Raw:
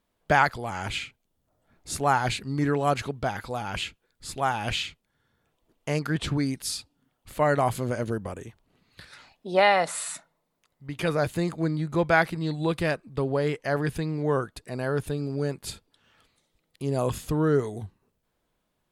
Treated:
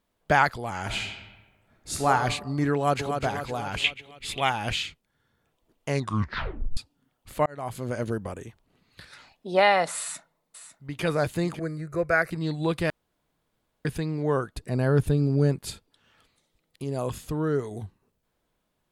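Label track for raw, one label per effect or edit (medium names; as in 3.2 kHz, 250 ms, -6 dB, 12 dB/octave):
0.820000	2.080000	reverb throw, RT60 1.2 s, DRR 2 dB
2.740000	3.220000	echo throw 250 ms, feedback 55%, level -6 dB
3.840000	4.500000	high-order bell 2.7 kHz +15 dB 1.1 oct
5.890000	5.890000	tape stop 0.88 s
7.460000	8.030000	fade in
9.990000	11.040000	echo throw 550 ms, feedback 30%, level -12 dB
11.590000	12.310000	static phaser centre 890 Hz, stages 6
12.900000	13.850000	room tone
14.550000	15.590000	bass shelf 300 Hz +11 dB
16.840000	17.710000	gain -3.5 dB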